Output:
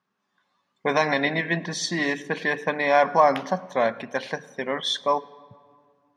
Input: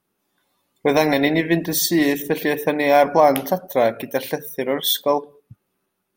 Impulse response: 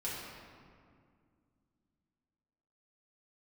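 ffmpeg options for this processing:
-filter_complex "[0:a]highpass=130,equalizer=frequency=200:width_type=q:width=4:gain=4,equalizer=frequency=320:width_type=q:width=4:gain=-9,equalizer=frequency=470:width_type=q:width=4:gain=-3,equalizer=frequency=1100:width_type=q:width=4:gain=8,equalizer=frequency=1700:width_type=q:width=4:gain=7,lowpass=frequency=6400:width=0.5412,lowpass=frequency=6400:width=1.3066,asplit=2[link_01][link_02];[1:a]atrim=start_sample=2205,adelay=103[link_03];[link_02][link_03]afir=irnorm=-1:irlink=0,volume=-24.5dB[link_04];[link_01][link_04]amix=inputs=2:normalize=0,volume=-4.5dB"

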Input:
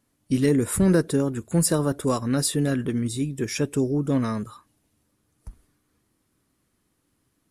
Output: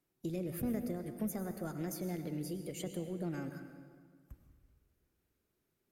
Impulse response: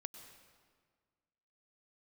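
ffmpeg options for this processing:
-filter_complex "[0:a]asetrate=56007,aresample=44100,acrossover=split=230[link_01][link_02];[link_02]acompressor=threshold=-29dB:ratio=6[link_03];[link_01][link_03]amix=inputs=2:normalize=0[link_04];[1:a]atrim=start_sample=2205[link_05];[link_04][link_05]afir=irnorm=-1:irlink=0,volume=-7.5dB"

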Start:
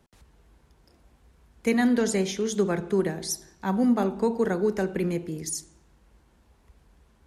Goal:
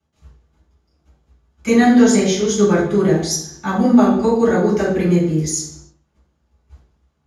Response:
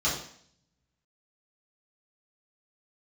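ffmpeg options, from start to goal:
-filter_complex "[0:a]agate=range=-17dB:threshold=-54dB:ratio=16:detection=peak[link_01];[1:a]atrim=start_sample=2205,afade=type=out:start_time=0.39:duration=0.01,atrim=end_sample=17640[link_02];[link_01][link_02]afir=irnorm=-1:irlink=0,volume=-1dB"

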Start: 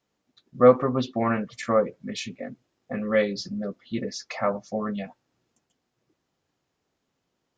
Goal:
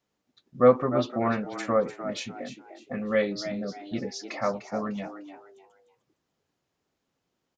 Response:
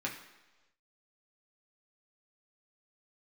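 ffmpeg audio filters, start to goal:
-filter_complex "[0:a]asplit=4[link_01][link_02][link_03][link_04];[link_02]adelay=300,afreqshift=94,volume=-11dB[link_05];[link_03]adelay=600,afreqshift=188,volume=-21.2dB[link_06];[link_04]adelay=900,afreqshift=282,volume=-31.3dB[link_07];[link_01][link_05][link_06][link_07]amix=inputs=4:normalize=0,volume=-2.5dB"

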